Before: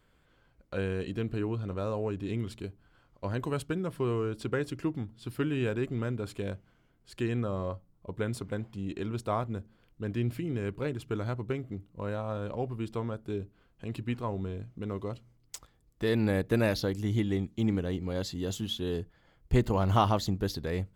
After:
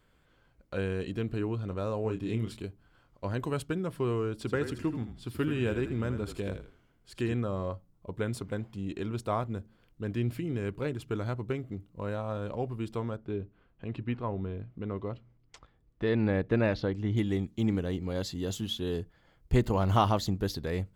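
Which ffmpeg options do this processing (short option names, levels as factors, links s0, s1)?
-filter_complex "[0:a]asettb=1/sr,asplit=3[s0][s1][s2];[s0]atrim=end=2.024[s3];[s1]atrim=start=2.02:end=2.62,asetpts=PTS-STARTPTS,afade=t=in:d=0.004:c=qsin,afade=t=out:st=0.596:d=0.004:c=qsin,asplit=2[s4][s5];[s5]adelay=27,volume=0.447[s6];[s4][s6]amix=inputs=2:normalize=0,atrim=end_sample=26460[s7];[s2]atrim=start=2.616[s8];[s3][s7]acrossfade=d=0.004:c1=hsin:c2=qsin[s9];[s9][s8]acrossfade=d=0.004:c1=qsin:c2=hsin,asettb=1/sr,asplit=3[s10][s11][s12];[s10]atrim=end=4.374[s13];[s11]atrim=start=4.37:end=7.34,asetpts=PTS-STARTPTS,afade=t=in:d=0.004:c=qsin,afade=t=out:st=2.966:d=0.004:c=qsin,asplit=5[s14][s15][s16][s17][s18];[s15]adelay=81,afreqshift=-36,volume=0.355[s19];[s16]adelay=162,afreqshift=-72,volume=0.114[s20];[s17]adelay=243,afreqshift=-108,volume=0.0363[s21];[s18]adelay=324,afreqshift=-144,volume=0.0116[s22];[s14][s19][s20][s21][s22]amix=inputs=5:normalize=0,atrim=end_sample=130977[s23];[s12]atrim=start=7.336[s24];[s13][s23]acrossfade=d=0.004:c1=hsin:c2=qsin[s25];[s25][s24]acrossfade=d=0.004:c1=qsin:c2=hsin,asettb=1/sr,asplit=3[s26][s27][s28];[s26]atrim=end=13.164[s29];[s27]atrim=start=13.16:end=17.17,asetpts=PTS-STARTPTS,afade=t=in:d=0.004:c=qsin,afade=t=out:st=4.006:d=0.004:c=qsin,lowpass=2900[s30];[s28]atrim=start=17.166[s31];[s29][s30]acrossfade=d=0.004:c1=hsin:c2=qsin[s32];[s32][s31]acrossfade=d=0.004:c1=qsin:c2=hsin"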